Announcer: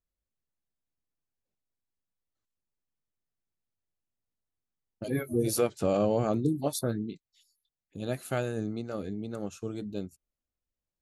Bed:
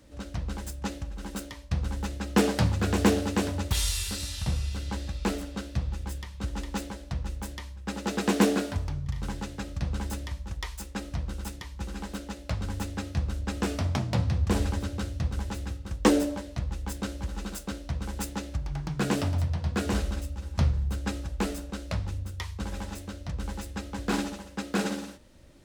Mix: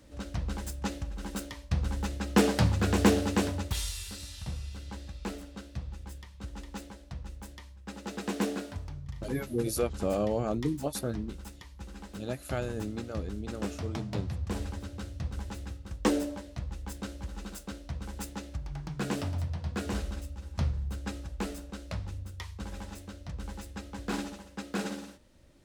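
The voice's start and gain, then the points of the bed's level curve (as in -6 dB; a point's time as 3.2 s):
4.20 s, -3.0 dB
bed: 3.43 s -0.5 dB
3.94 s -8.5 dB
14.8 s -8.5 dB
15.35 s -5.5 dB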